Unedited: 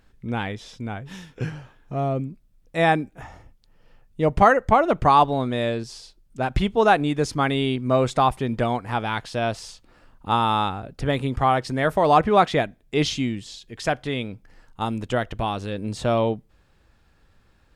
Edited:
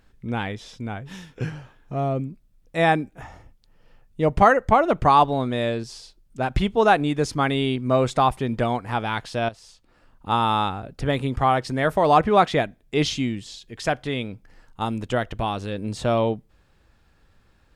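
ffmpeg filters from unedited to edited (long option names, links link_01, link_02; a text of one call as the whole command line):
ffmpeg -i in.wav -filter_complex "[0:a]asplit=2[link_01][link_02];[link_01]atrim=end=9.49,asetpts=PTS-STARTPTS,afade=type=out:start_time=9.486:duration=0.004:curve=hsin:silence=0.188365[link_03];[link_02]atrim=start=9.49,asetpts=PTS-STARTPTS,afade=type=in:duration=0.94:silence=0.188365[link_04];[link_03][link_04]concat=n=2:v=0:a=1" out.wav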